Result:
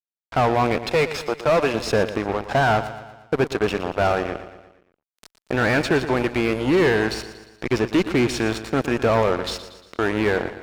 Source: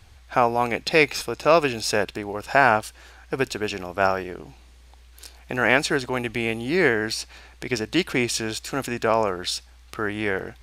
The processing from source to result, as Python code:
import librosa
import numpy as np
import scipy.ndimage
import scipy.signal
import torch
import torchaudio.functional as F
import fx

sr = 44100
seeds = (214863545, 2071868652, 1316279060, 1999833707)

y = fx.peak_eq(x, sr, hz=86.0, db=-13.0, octaves=2.4, at=(0.78, 1.74))
y = fx.fuzz(y, sr, gain_db=26.0, gate_db=-32.0)
y = fx.lowpass(y, sr, hz=1500.0, slope=6)
y = fx.echo_feedback(y, sr, ms=117, feedback_pct=52, wet_db=-13.0)